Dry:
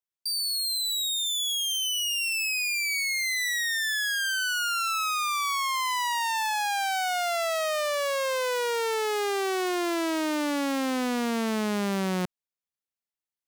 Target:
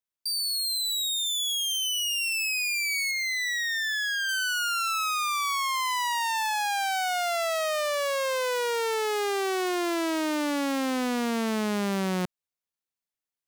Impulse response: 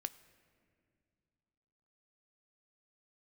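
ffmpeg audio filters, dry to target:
-filter_complex "[0:a]asettb=1/sr,asplit=3[s0][s1][s2];[s0]atrim=end=3.114[s3];[s1]atrim=start=3.11:end=4.29,asetpts=PTS-STARTPTS,afade=t=in:d=0.004:c=qsin,afade=t=out:st=1.176:d=0.004:c=qsin,equalizer=f=11000:w=1.1:g=-13[s4];[s2]atrim=start=4.286[s5];[s3][s4]acrossfade=d=0.004:c1=hsin:c2=qsin[s6];[s6][s5]acrossfade=d=0.004:c1=qsin:c2=hsin"

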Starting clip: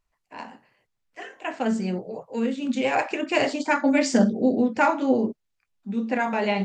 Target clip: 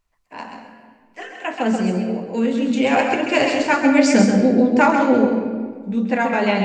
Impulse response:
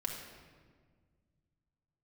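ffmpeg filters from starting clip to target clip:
-filter_complex "[0:a]asplit=2[s0][s1];[1:a]atrim=start_sample=2205,adelay=131[s2];[s1][s2]afir=irnorm=-1:irlink=0,volume=0.562[s3];[s0][s3]amix=inputs=2:normalize=0,volume=1.68"

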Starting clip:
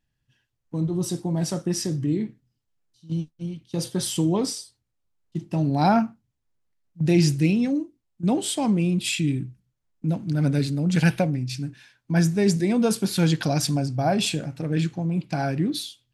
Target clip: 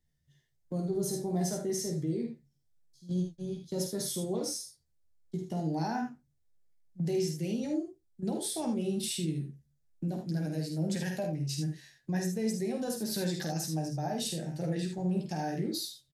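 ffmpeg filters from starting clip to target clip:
-filter_complex "[0:a]equalizer=f=250:t=o:w=0.67:g=-8,equalizer=f=1000:t=o:w=0.67:g=-12,equalizer=f=2500:t=o:w=0.67:g=-10,asetrate=48091,aresample=44100,atempo=0.917004,asplit=2[s0][s1];[s1]adelay=13,volume=0.531[s2];[s0][s2]amix=inputs=2:normalize=0,acrossover=split=170[s3][s4];[s3]acompressor=threshold=0.01:ratio=6[s5];[s5][s4]amix=inputs=2:normalize=0,alimiter=limit=0.0631:level=0:latency=1:release=402,asplit=2[s6][s7];[s7]aecho=0:1:50|77:0.473|0.422[s8];[s6][s8]amix=inputs=2:normalize=0,volume=0.841"

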